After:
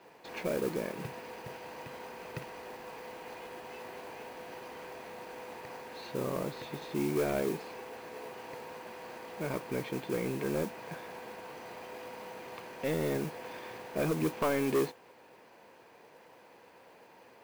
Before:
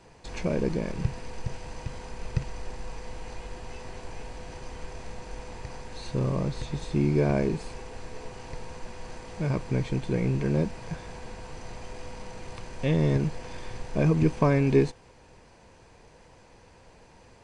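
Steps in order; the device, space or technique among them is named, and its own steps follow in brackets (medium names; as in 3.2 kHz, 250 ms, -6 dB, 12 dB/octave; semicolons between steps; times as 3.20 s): carbon microphone (band-pass 300–3400 Hz; saturation -23.5 dBFS, distortion -10 dB; modulation noise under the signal 17 dB)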